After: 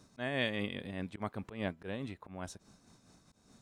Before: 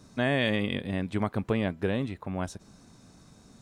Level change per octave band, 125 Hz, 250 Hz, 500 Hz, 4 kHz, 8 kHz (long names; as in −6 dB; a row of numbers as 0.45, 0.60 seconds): −11.5, −10.5, −9.5, −6.5, −5.0 decibels